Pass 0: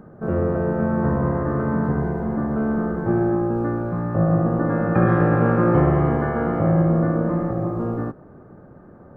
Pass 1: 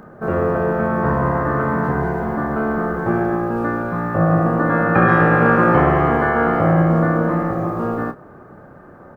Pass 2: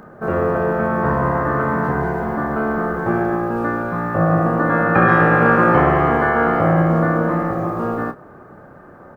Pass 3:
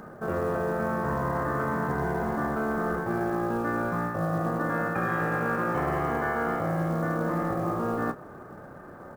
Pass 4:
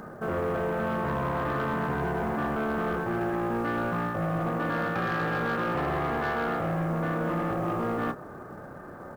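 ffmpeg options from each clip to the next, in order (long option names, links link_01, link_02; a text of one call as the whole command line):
ffmpeg -i in.wav -filter_complex "[0:a]tiltshelf=frequency=690:gain=-6.5,asplit=2[link_01][link_02];[link_02]adelay=30,volume=-10dB[link_03];[link_01][link_03]amix=inputs=2:normalize=0,volume=6dB" out.wav
ffmpeg -i in.wav -af "lowshelf=frequency=420:gain=-3,volume=1.5dB" out.wav
ffmpeg -i in.wav -af "areverse,acompressor=threshold=-22dB:ratio=8,areverse,acrusher=bits=7:mode=log:mix=0:aa=0.000001,volume=-2.5dB" out.wav
ffmpeg -i in.wav -af "asoftclip=type=tanh:threshold=-25dB,volume=2dB" out.wav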